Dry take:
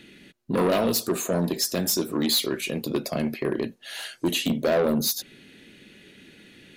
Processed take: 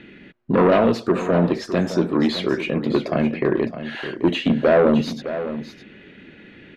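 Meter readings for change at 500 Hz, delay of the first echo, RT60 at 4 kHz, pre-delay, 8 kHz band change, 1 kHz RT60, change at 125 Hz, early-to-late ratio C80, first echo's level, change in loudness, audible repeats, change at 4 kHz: +7.0 dB, 611 ms, no reverb, no reverb, under -15 dB, no reverb, +7.0 dB, no reverb, -11.5 dB, +5.0 dB, 1, -4.0 dB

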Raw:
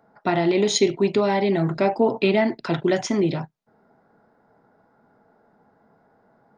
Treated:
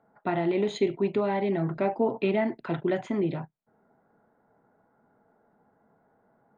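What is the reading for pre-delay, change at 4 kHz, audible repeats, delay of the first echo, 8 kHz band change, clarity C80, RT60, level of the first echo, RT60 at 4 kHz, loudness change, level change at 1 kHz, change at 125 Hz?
no reverb, -14.5 dB, no echo, no echo, under -20 dB, no reverb, no reverb, no echo, no reverb, -6.5 dB, -6.5 dB, -6.0 dB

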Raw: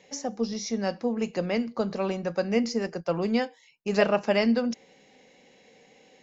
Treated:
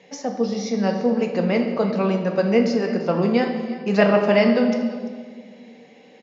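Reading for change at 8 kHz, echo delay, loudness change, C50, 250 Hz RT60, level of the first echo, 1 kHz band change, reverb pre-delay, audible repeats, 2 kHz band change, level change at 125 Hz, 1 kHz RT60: no reading, 341 ms, +7.0 dB, 6.0 dB, 2.3 s, -16.5 dB, +6.5 dB, 4 ms, 1, +6.0 dB, +9.5 dB, 1.6 s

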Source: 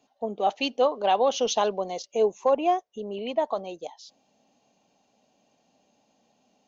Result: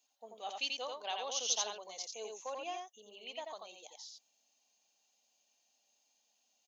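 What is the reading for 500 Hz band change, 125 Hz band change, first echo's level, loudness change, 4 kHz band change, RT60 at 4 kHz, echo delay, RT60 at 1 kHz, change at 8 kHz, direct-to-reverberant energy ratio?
-21.0 dB, no reading, -3.5 dB, -13.0 dB, -4.5 dB, no reverb, 87 ms, no reverb, no reading, no reverb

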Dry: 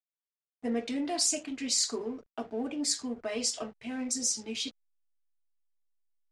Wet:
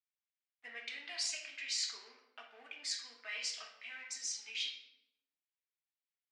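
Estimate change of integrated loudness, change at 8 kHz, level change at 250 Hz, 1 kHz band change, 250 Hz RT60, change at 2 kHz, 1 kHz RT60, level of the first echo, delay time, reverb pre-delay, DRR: -8.5 dB, -11.5 dB, -36.5 dB, -15.0 dB, 1.4 s, +1.5 dB, 0.80 s, no echo, no echo, 20 ms, 3.5 dB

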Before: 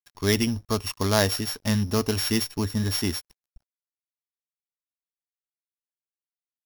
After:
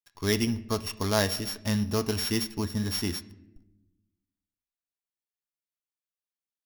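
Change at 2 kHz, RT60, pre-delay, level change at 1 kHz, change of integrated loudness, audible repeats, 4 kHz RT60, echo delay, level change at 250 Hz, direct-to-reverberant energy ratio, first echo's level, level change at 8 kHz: -3.5 dB, 0.95 s, 6 ms, -3.5 dB, -3.5 dB, no echo, 0.55 s, no echo, -3.0 dB, 10.5 dB, no echo, -4.0 dB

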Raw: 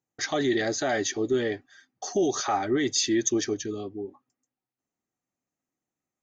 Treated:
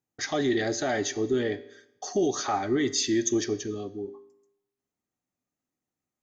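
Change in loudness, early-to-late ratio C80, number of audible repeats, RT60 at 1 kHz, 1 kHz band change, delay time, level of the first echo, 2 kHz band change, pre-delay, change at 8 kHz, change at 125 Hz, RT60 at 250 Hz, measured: -1.0 dB, 17.5 dB, no echo, 0.80 s, -1.5 dB, no echo, no echo, -2.0 dB, 5 ms, -2.0 dB, +1.0 dB, 0.80 s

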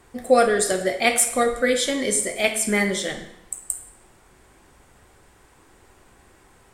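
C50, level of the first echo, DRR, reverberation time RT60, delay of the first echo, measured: 9.0 dB, no echo, 5.0 dB, 0.80 s, no echo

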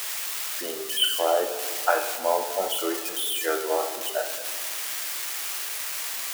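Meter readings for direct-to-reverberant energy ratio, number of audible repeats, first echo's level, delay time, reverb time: 7.0 dB, no echo, no echo, no echo, 2.2 s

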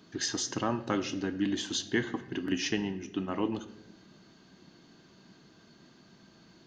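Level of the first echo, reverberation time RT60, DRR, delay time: no echo, 0.90 s, 9.0 dB, no echo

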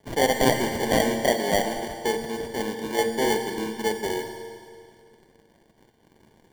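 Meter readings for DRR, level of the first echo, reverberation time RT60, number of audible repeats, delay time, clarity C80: 5.0 dB, no echo, 2.2 s, no echo, no echo, 6.5 dB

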